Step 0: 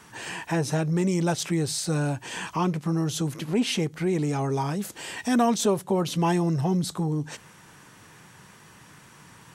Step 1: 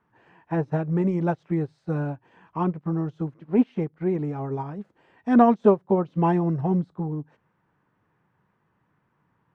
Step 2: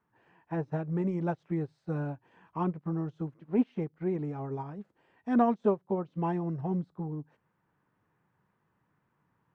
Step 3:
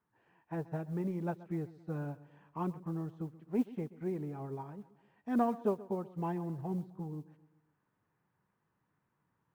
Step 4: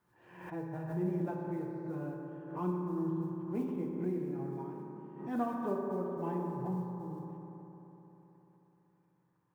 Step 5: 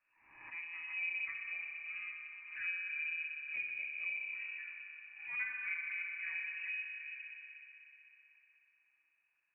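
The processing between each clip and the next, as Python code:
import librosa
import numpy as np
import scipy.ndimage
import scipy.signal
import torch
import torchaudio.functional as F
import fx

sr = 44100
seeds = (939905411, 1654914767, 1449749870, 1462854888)

y1 = scipy.signal.sosfilt(scipy.signal.butter(2, 1400.0, 'lowpass', fs=sr, output='sos'), x)
y1 = fx.upward_expand(y1, sr, threshold_db=-35.0, expansion=2.5)
y1 = F.gain(torch.from_numpy(y1), 7.5).numpy()
y2 = fx.rider(y1, sr, range_db=4, speed_s=2.0)
y2 = F.gain(torch.from_numpy(y2), -9.0).numpy()
y3 = fx.mod_noise(y2, sr, seeds[0], snr_db=35)
y3 = fx.echo_feedback(y3, sr, ms=130, feedback_pct=51, wet_db=-18.5)
y3 = F.gain(torch.from_numpy(y3), -5.5).numpy()
y4 = fx.rev_fdn(y3, sr, rt60_s=3.8, lf_ratio=1.0, hf_ratio=0.3, size_ms=17.0, drr_db=-1.5)
y4 = fx.pre_swell(y4, sr, db_per_s=74.0)
y4 = F.gain(torch.from_numpy(y4), -5.0).numpy()
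y5 = fx.freq_invert(y4, sr, carrier_hz=2700)
y5 = F.gain(torch.from_numpy(y5), -5.5).numpy()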